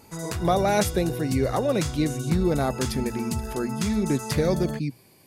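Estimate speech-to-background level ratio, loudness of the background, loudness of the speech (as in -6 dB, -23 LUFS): 5.5 dB, -31.5 LUFS, -26.0 LUFS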